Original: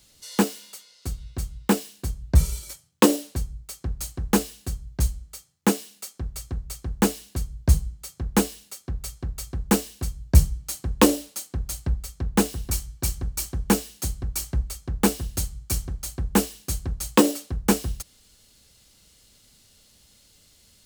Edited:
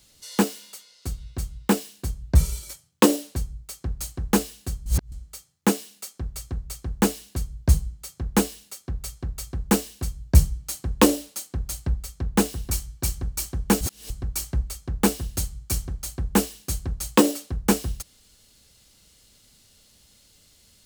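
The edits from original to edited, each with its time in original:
4.86–5.12 reverse
13.81–14.1 reverse

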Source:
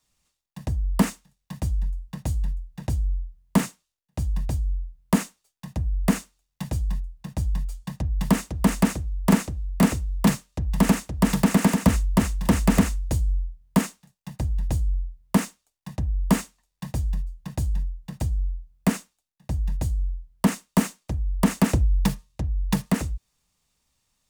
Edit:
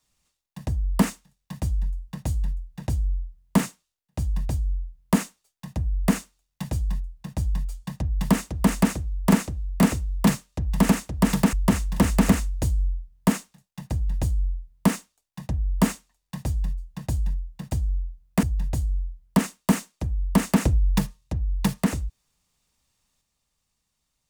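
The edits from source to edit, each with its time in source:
11.53–12.02 cut
18.92–19.51 cut

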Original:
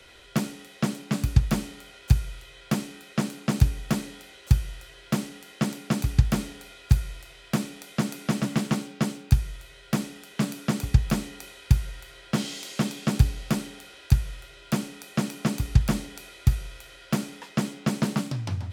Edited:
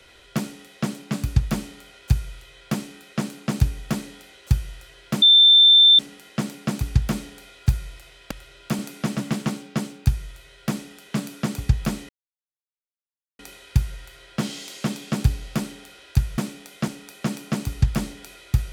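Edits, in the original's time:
5.22 add tone 3560 Hz -9 dBFS 0.77 s
7.54–8.04 swap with 14.33–14.81
11.34 insert silence 1.30 s

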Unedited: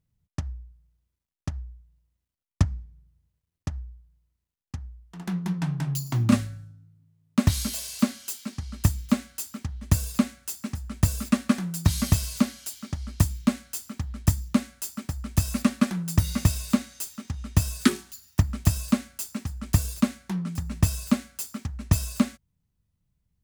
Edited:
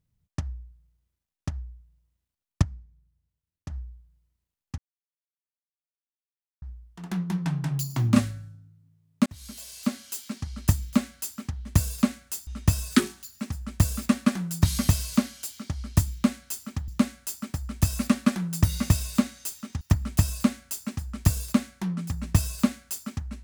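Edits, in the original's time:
2.62–3.7 gain -7.5 dB
4.78 insert silence 1.84 s
7.42–8.42 fade in
14.11–14.43 cut
17.36–18.29 move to 10.63

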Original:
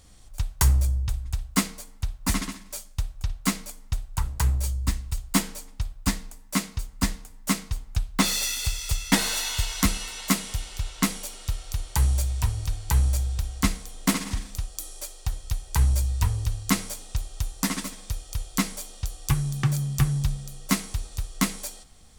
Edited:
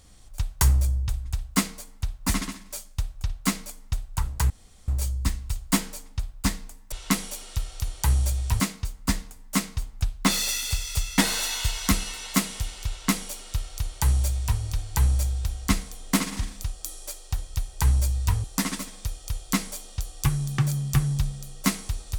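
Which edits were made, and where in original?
4.5 insert room tone 0.38 s
10.84–12.52 copy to 6.54
16.38–17.49 cut

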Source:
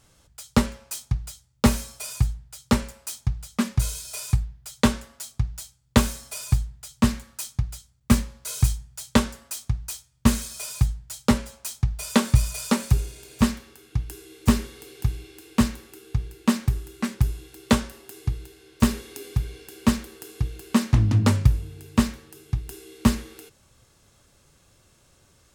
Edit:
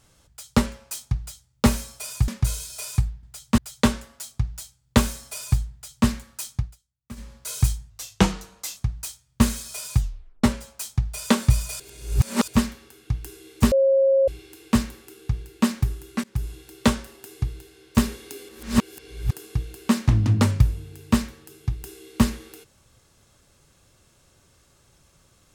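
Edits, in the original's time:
2.28–3.63 cut
6.72–7.07 copy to 4.58
7.58–8.34 dip -21.5 dB, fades 0.18 s
8.9–9.62 speed 83%
10.83 tape stop 0.46 s
12.65–13.33 reverse
14.57–15.13 bleep 541 Hz -14.5 dBFS
17.09–17.37 fade in, from -23.5 dB
19.34–20.18 reverse

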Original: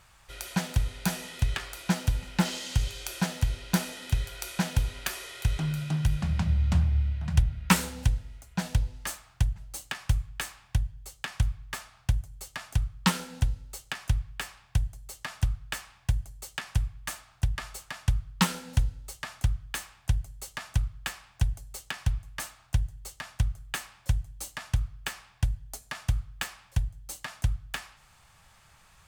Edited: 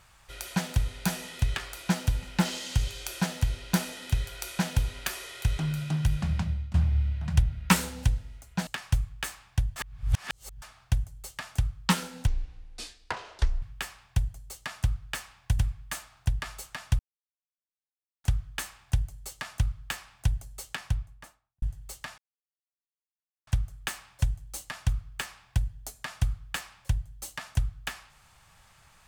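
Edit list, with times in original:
6.32–6.74 fade out, to -21.5 dB
8.67–9.84 cut
10.93–11.79 reverse
13.44–14.21 speed 57%
16.18–16.75 cut
18.15–19.4 mute
21.85–22.78 studio fade out
23.34 insert silence 1.29 s

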